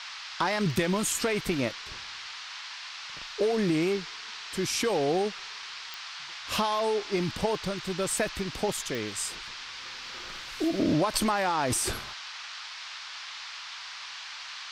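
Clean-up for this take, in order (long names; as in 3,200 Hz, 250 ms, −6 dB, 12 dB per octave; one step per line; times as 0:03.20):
click removal
noise reduction from a noise print 30 dB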